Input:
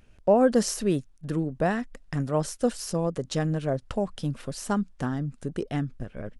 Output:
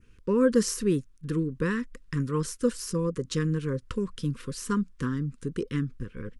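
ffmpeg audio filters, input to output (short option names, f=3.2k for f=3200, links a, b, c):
-af "adynamicequalizer=threshold=0.00282:dfrequency=3500:dqfactor=1.3:tfrequency=3500:tqfactor=1.3:attack=5:release=100:ratio=0.375:range=2.5:mode=cutabove:tftype=bell,asuperstop=centerf=710:order=12:qfactor=1.6"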